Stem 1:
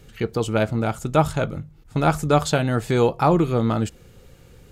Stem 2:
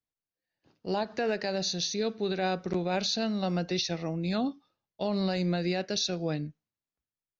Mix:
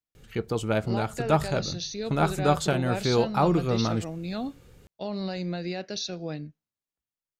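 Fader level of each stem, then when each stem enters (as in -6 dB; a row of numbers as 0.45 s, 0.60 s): -5.0 dB, -3.0 dB; 0.15 s, 0.00 s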